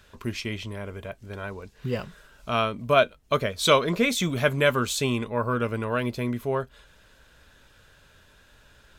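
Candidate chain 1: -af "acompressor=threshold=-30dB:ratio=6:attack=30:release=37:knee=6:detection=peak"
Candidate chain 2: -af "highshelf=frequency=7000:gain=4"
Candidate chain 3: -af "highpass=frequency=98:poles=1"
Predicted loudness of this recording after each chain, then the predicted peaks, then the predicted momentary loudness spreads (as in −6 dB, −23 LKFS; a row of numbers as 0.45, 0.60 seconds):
−31.0, −25.5, −26.0 LKFS; −14.5, −6.0, −5.5 dBFS; 10, 16, 17 LU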